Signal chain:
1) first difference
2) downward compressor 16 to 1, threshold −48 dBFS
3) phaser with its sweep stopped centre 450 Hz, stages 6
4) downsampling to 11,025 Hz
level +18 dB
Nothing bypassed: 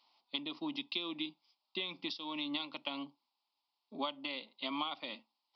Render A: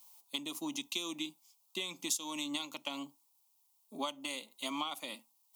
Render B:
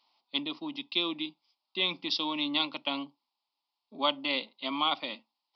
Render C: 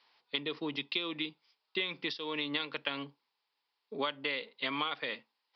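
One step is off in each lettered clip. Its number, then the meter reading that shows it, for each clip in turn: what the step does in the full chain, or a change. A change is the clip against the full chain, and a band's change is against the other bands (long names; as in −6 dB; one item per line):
4, change in crest factor +2.5 dB
2, average gain reduction 6.5 dB
3, change in momentary loudness spread −1 LU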